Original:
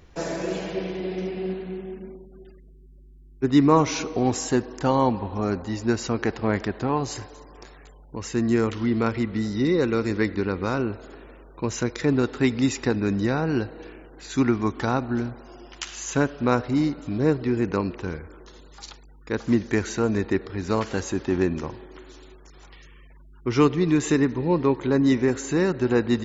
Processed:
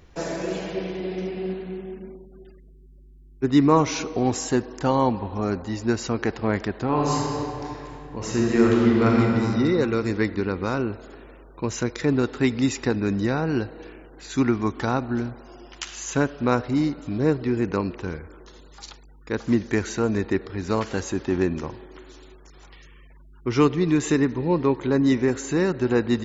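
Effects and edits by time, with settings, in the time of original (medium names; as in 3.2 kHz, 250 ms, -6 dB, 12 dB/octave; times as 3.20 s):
6.86–9.21 s: reverb throw, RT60 2.7 s, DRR -3.5 dB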